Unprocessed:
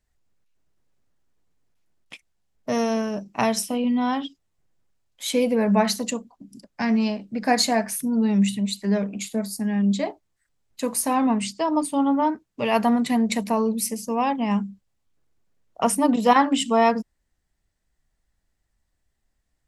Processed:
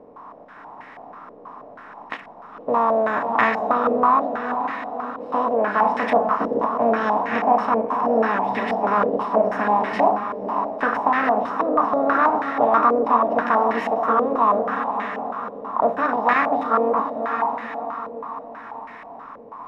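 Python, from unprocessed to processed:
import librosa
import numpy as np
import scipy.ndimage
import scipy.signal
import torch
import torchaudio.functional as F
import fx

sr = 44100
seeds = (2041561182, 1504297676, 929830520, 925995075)

p1 = fx.bin_compress(x, sr, power=0.4)
p2 = fx.hum_notches(p1, sr, base_hz=50, count=4)
p3 = fx.rider(p2, sr, range_db=10, speed_s=0.5)
p4 = fx.notch(p3, sr, hz=510.0, q=15.0)
p5 = p4 + fx.echo_diffused(p4, sr, ms=528, feedback_pct=54, wet_db=-6.0, dry=0)
p6 = fx.formant_shift(p5, sr, semitones=4)
p7 = fx.peak_eq(p6, sr, hz=190.0, db=-6.5, octaves=0.81)
p8 = fx.filter_held_lowpass(p7, sr, hz=6.2, low_hz=510.0, high_hz=1900.0)
y = p8 * 10.0 ** (-6.5 / 20.0)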